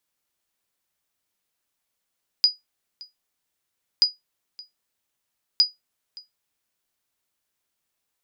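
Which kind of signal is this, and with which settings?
sonar ping 4920 Hz, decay 0.17 s, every 1.58 s, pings 3, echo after 0.57 s, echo -23.5 dB -8.5 dBFS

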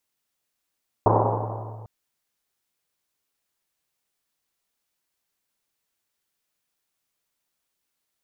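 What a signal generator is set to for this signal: Risset drum length 0.80 s, pitch 110 Hz, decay 2.98 s, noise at 680 Hz, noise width 680 Hz, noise 60%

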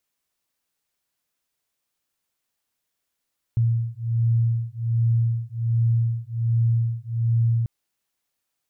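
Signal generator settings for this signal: beating tones 115 Hz, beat 1.3 Hz, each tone -22 dBFS 4.09 s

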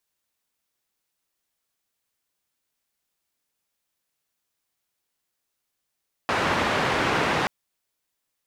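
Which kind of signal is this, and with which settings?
noise band 87–1700 Hz, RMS -23.5 dBFS 1.18 s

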